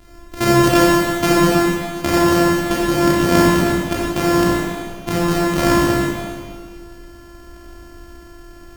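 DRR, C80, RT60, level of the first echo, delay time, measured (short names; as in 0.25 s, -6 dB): -5.5 dB, -0.5 dB, 2.0 s, none, none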